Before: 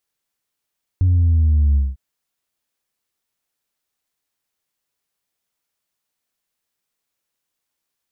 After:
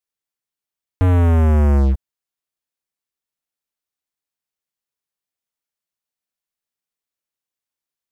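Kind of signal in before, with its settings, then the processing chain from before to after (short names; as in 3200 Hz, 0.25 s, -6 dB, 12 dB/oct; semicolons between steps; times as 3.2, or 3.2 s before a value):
sub drop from 93 Hz, over 0.95 s, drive 1 dB, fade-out 0.20 s, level -12 dB
sample leveller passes 5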